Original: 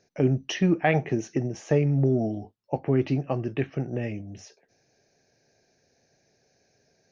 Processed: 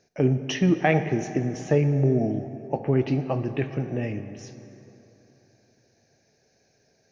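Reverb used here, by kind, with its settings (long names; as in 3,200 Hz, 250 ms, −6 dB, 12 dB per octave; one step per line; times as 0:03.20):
dense smooth reverb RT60 3.2 s, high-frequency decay 0.6×, DRR 9 dB
level +1 dB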